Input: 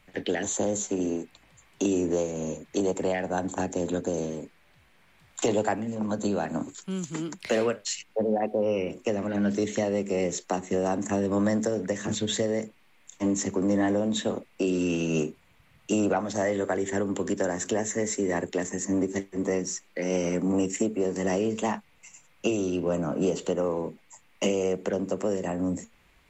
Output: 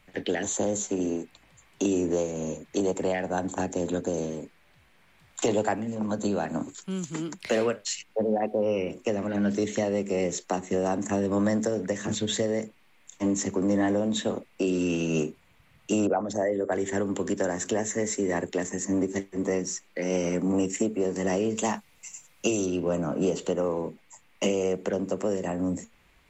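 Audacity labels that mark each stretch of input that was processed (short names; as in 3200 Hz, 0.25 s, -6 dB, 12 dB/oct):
16.070000	16.720000	formant sharpening exponent 1.5
21.570000	22.660000	tone controls bass 0 dB, treble +9 dB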